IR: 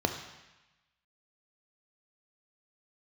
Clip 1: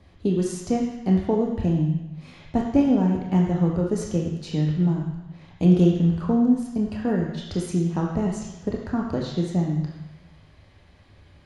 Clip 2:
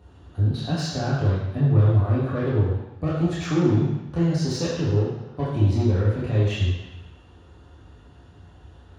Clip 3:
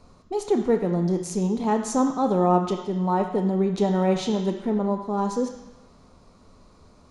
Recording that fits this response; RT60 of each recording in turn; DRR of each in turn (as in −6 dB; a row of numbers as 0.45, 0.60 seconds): 3; 1.0, 1.0, 1.0 seconds; −0.5, −8.0, 5.5 decibels